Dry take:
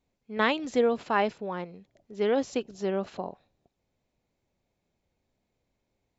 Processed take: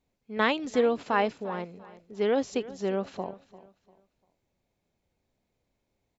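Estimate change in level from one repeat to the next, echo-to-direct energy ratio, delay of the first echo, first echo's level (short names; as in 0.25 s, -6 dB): -10.0 dB, -17.5 dB, 0.346 s, -18.0 dB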